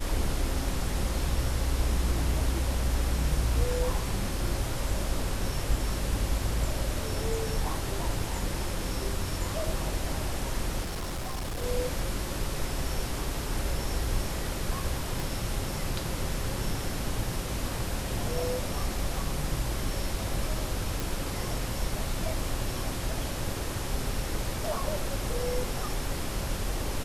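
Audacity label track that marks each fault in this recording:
10.810000	11.640000	clipped -30 dBFS
15.200000	15.200000	pop
21.000000	21.000000	pop

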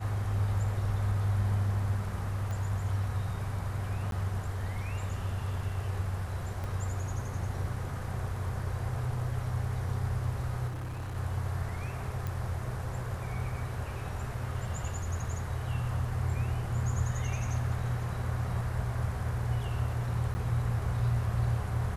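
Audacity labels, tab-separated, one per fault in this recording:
2.510000	2.510000	pop
4.110000	4.120000	dropout
6.640000	6.640000	pop
10.670000	11.170000	clipped -34 dBFS
12.270000	12.270000	pop
20.340000	20.350000	dropout 10 ms

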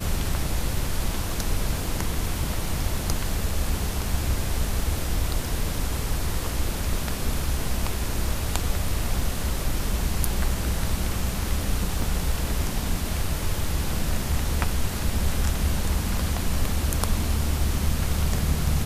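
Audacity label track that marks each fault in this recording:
12.020000	12.020000	dropout 2.8 ms

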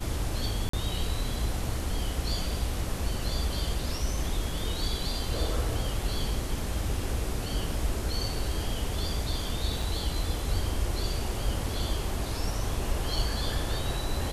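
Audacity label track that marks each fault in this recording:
0.690000	0.730000	dropout 44 ms
9.820000	9.820000	dropout 3.4 ms

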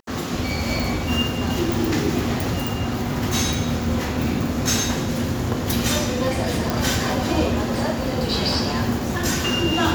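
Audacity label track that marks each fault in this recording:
6.700000	6.700000	pop

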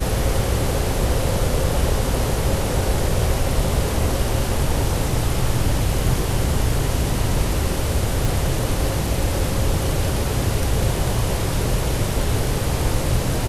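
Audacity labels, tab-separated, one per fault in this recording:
8.250000	8.250000	pop

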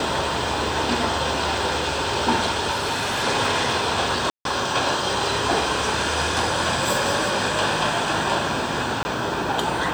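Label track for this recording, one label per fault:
2.700000	3.240000	clipped -20.5 dBFS
4.300000	4.450000	dropout 152 ms
9.030000	9.050000	dropout 20 ms

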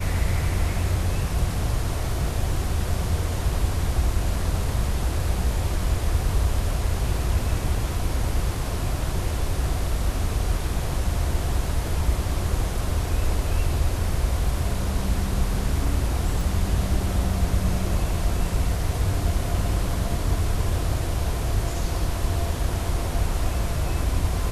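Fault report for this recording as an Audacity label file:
16.410000	16.410000	dropout 2.9 ms

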